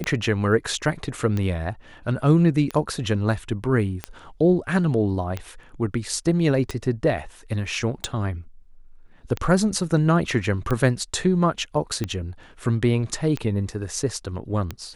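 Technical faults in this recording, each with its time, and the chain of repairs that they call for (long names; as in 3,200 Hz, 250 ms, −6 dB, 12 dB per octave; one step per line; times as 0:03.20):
scratch tick 45 rpm −13 dBFS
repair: click removal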